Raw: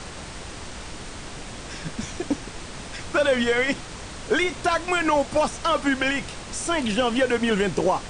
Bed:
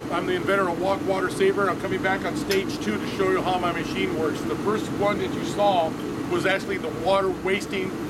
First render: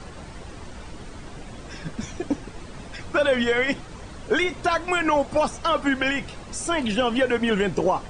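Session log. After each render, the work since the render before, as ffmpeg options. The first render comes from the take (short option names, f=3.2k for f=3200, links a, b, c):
-af "afftdn=nr=10:nf=-38"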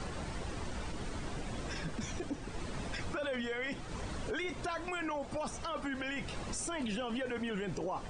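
-af "acompressor=threshold=-35dB:ratio=2,alimiter=level_in=5.5dB:limit=-24dB:level=0:latency=1:release=15,volume=-5.5dB"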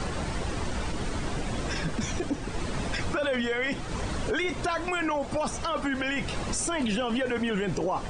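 -af "volume=9dB"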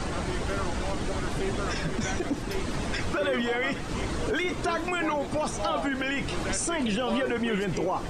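-filter_complex "[1:a]volume=-12.5dB[a];[0:a][a]amix=inputs=2:normalize=0"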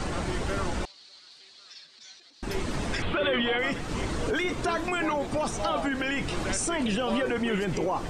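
-filter_complex "[0:a]asettb=1/sr,asplit=3[a][b][c];[a]atrim=end=0.854[d];[b]atrim=start=0.85:end=2.43,asetpts=PTS-STARTPTS,afade=t=in:d=0.004:c=qsin,afade=t=out:st=1.576:d=0.004:c=qsin,bandpass=f=4.3k:t=q:w=6.5[e];[c]atrim=start=2.426[f];[d][e]acrossfade=d=0.004:c1=hsin:c2=qsin[g];[g][f]acrossfade=d=0.004:c1=qsin:c2=hsin,asettb=1/sr,asplit=3[h][i][j];[h]atrim=end=3.024[k];[i]atrim=start=3.02:end=3.59,asetpts=PTS-STARTPTS,afade=t=in:d=0.004:c=qsin,afade=t=out:st=0.566:d=0.004:c=qsin,highshelf=f=4.4k:t=q:w=3:g=-10.5[l];[j]atrim=start=3.586[m];[k][l]acrossfade=d=0.004:c1=hsin:c2=qsin[n];[n][m]acrossfade=d=0.004:c1=qsin:c2=hsin"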